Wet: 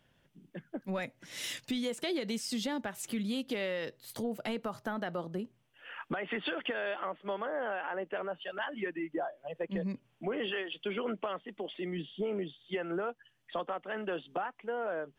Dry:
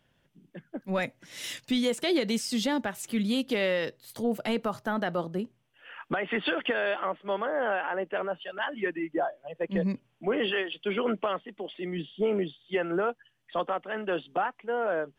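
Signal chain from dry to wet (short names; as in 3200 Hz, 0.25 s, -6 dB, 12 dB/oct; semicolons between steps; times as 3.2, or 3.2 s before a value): compressor 2.5:1, threshold -35 dBFS, peak gain reduction 8.5 dB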